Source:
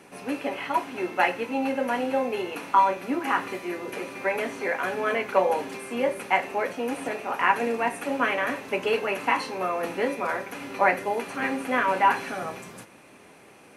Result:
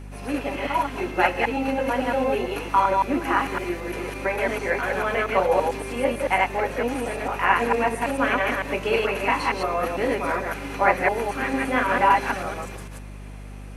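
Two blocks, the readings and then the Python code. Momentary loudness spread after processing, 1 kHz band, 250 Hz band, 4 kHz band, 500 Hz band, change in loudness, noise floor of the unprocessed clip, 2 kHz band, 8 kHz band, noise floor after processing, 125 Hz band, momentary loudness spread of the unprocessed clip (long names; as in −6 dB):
9 LU, +2.5 dB, +3.0 dB, +3.0 dB, +3.0 dB, +3.0 dB, −51 dBFS, +3.0 dB, +3.0 dB, −38 dBFS, +11.0 dB, 10 LU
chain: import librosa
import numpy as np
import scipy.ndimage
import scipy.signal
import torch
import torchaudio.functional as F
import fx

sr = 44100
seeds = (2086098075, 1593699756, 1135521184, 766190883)

y = fx.reverse_delay(x, sr, ms=112, wet_db=0)
y = fx.add_hum(y, sr, base_hz=50, snr_db=14)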